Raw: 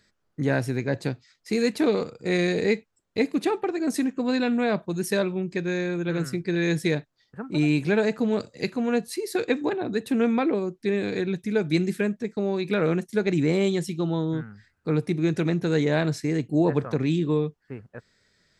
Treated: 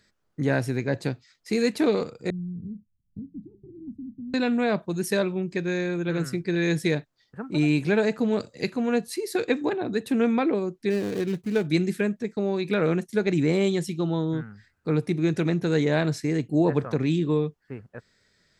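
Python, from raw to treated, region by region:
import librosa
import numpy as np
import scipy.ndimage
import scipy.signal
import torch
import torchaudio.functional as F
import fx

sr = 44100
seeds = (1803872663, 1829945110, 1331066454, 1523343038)

y = fx.chain(x, sr, fx.cheby2_lowpass(hz=600.0, order=4, stop_db=60),
    fx.doubler(ms=33.0, db=-14.0),
    fx.band_squash(depth_pct=70), at=(2.3, 4.34))
y = fx.chain(y, sr, fx.median_filter(points=25),
    fx.high_shelf(hz=4700.0, db=6.5), at=(10.9, 11.67))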